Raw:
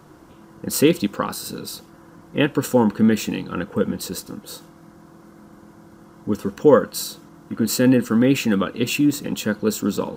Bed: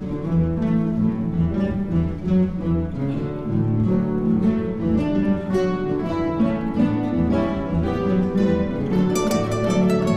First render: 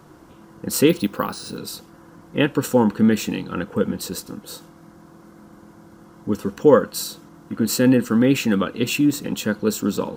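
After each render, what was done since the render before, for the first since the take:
0:00.89–0:01.58: bad sample-rate conversion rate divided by 3×, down filtered, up hold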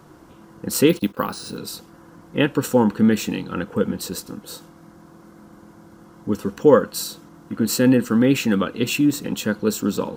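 0:00.74–0:01.17: noise gate −33 dBFS, range −21 dB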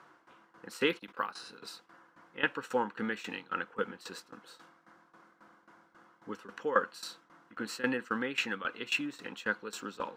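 resonant band-pass 1,700 Hz, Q 1.1
shaped tremolo saw down 3.7 Hz, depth 85%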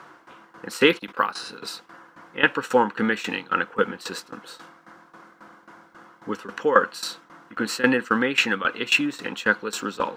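level +12 dB
brickwall limiter −2 dBFS, peak gain reduction 2 dB

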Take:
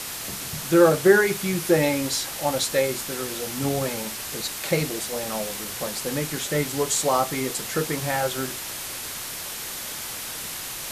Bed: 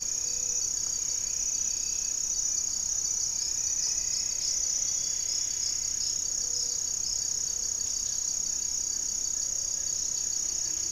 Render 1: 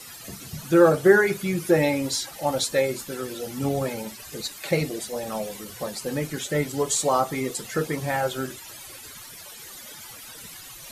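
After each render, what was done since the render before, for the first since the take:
broadband denoise 15 dB, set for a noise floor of −34 dBFS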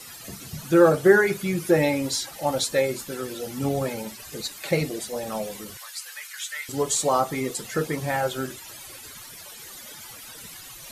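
0:05.77–0:06.69: high-pass filter 1,300 Hz 24 dB per octave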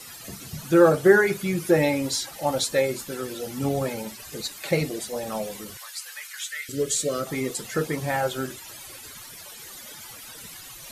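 0:06.49–0:07.27: Chebyshev band-stop filter 510–1,500 Hz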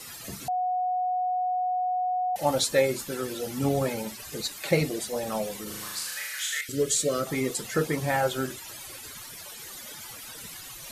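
0:00.48–0:02.36: beep over 732 Hz −24 dBFS
0:05.63–0:06.61: flutter between parallel walls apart 6.5 metres, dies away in 1 s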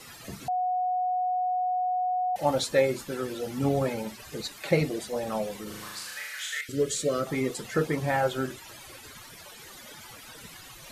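high-shelf EQ 4,900 Hz −9.5 dB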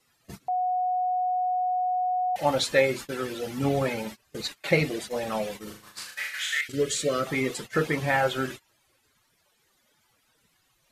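noise gate −38 dBFS, range −22 dB
dynamic equaliser 2,400 Hz, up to +7 dB, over −46 dBFS, Q 0.75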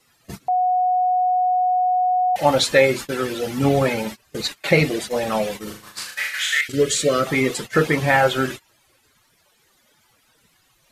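level +7.5 dB
brickwall limiter −3 dBFS, peak gain reduction 2.5 dB

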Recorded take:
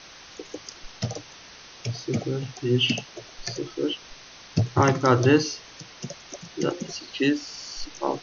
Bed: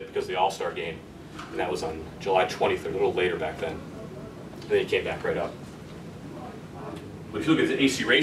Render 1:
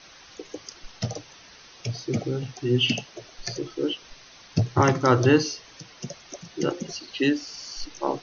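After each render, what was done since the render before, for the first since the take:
broadband denoise 6 dB, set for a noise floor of −47 dBFS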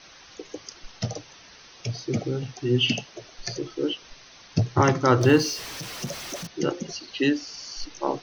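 0:05.21–0:06.47: converter with a step at zero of −33 dBFS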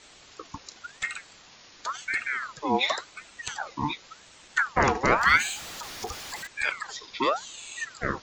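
ring modulator whose carrier an LFO sweeps 1,300 Hz, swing 55%, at 0.91 Hz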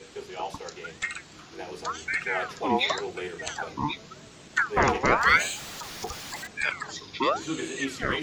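mix in bed −10.5 dB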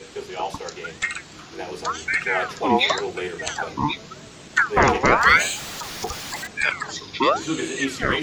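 level +6 dB
brickwall limiter −3 dBFS, peak gain reduction 2.5 dB

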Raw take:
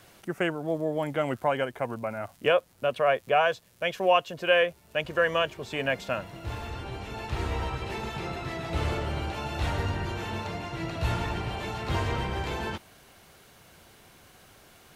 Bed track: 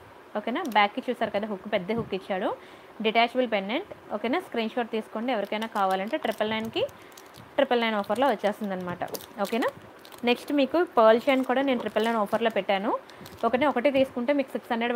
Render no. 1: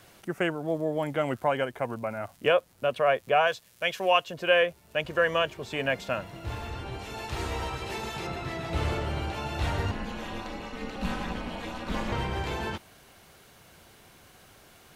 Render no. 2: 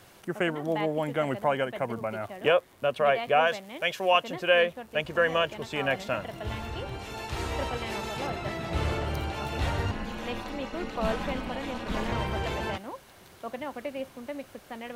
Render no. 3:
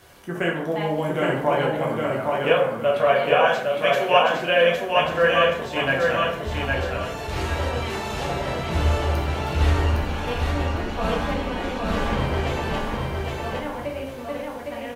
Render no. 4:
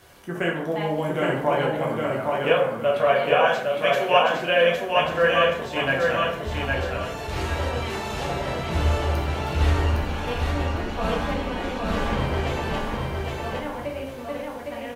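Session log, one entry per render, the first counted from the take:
0:03.47–0:04.24: tilt shelving filter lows −4 dB, about 1,100 Hz; 0:06.99–0:08.27: bass and treble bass −4 dB, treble +6 dB; 0:09.91–0:12.12: ring modulation 120 Hz
mix in bed track −13 dB
repeating echo 810 ms, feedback 28%, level −3 dB; dense smooth reverb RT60 0.65 s, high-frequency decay 0.6×, DRR −2.5 dB
level −1 dB

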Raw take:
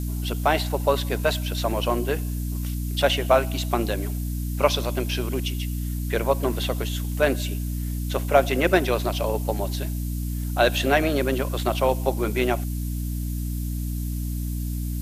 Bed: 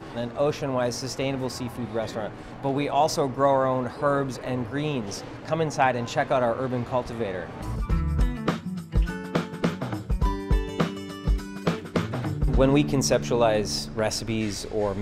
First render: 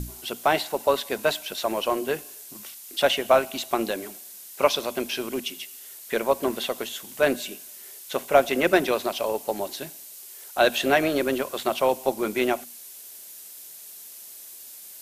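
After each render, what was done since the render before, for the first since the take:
mains-hum notches 60/120/180/240/300 Hz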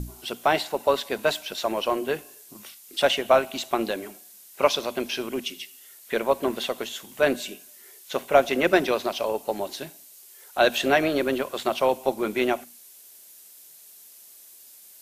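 noise reduction from a noise print 6 dB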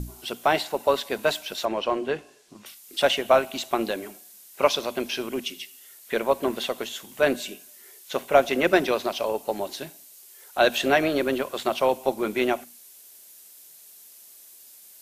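0:01.65–0:02.66: high-frequency loss of the air 90 metres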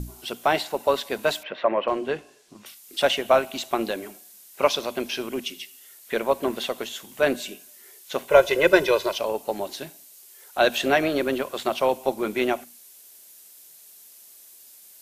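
0:01.43–0:01.88: loudspeaker in its box 120–2,800 Hz, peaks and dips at 560 Hz +8 dB, 1,100 Hz +6 dB, 1,900 Hz +9 dB
0:08.30–0:09.18: comb filter 2 ms, depth 89%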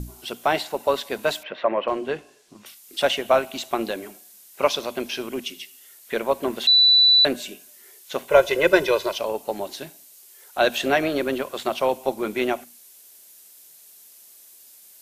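0:06.67–0:07.25: beep over 3,970 Hz −11.5 dBFS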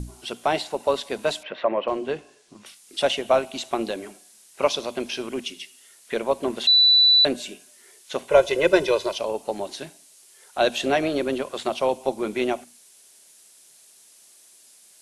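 Butterworth low-pass 11,000 Hz 48 dB per octave
dynamic equaliser 1,600 Hz, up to −5 dB, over −36 dBFS, Q 1.2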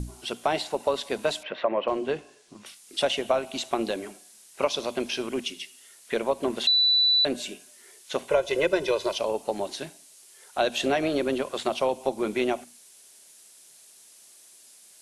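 downward compressor 4 to 1, threshold −20 dBFS, peak gain reduction 8.5 dB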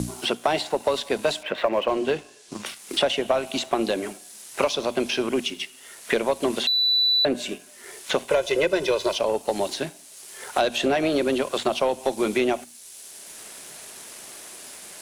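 leveller curve on the samples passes 1
multiband upward and downward compressor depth 70%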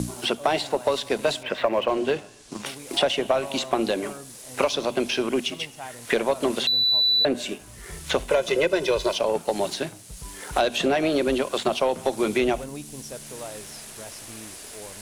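mix in bed −17 dB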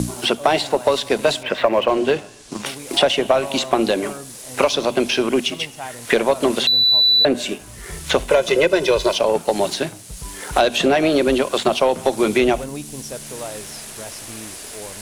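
level +6 dB
brickwall limiter −1 dBFS, peak gain reduction 1 dB

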